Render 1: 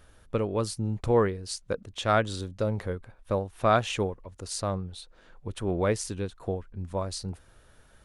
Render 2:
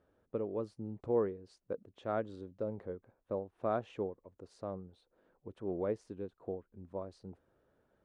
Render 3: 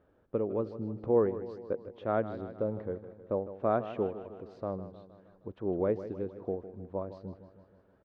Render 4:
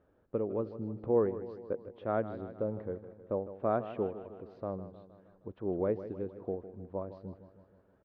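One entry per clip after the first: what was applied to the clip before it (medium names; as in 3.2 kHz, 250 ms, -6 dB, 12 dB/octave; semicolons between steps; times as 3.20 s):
band-pass filter 380 Hz, Q 0.92; trim -7 dB
distance through air 230 m; on a send: feedback delay 156 ms, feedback 58%, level -13 dB; on the sum: trim +6 dB
distance through air 150 m; trim -1.5 dB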